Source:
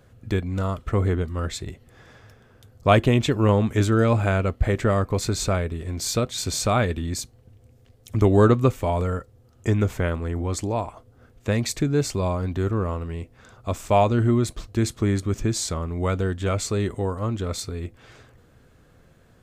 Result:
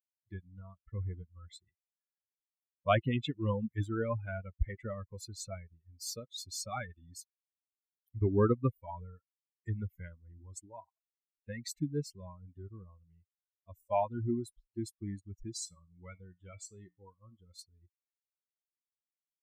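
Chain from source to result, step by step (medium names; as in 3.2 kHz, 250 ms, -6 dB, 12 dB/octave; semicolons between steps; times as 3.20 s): expander on every frequency bin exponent 3; 15.65–17.54 s: feedback comb 59 Hz, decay 0.2 s, harmonics odd, mix 50%; trim -6.5 dB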